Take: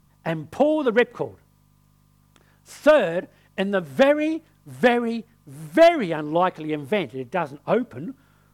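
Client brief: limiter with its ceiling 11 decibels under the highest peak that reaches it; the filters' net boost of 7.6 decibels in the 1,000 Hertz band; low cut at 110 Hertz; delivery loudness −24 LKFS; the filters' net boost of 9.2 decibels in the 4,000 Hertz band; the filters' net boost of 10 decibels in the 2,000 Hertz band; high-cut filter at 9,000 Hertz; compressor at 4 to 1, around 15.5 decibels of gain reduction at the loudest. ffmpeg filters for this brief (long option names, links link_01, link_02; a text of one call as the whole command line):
ffmpeg -i in.wav -af "highpass=110,lowpass=9000,equalizer=frequency=1000:width_type=o:gain=9,equalizer=frequency=2000:width_type=o:gain=7.5,equalizer=frequency=4000:width_type=o:gain=8.5,acompressor=threshold=-23dB:ratio=4,volume=7.5dB,alimiter=limit=-11.5dB:level=0:latency=1" out.wav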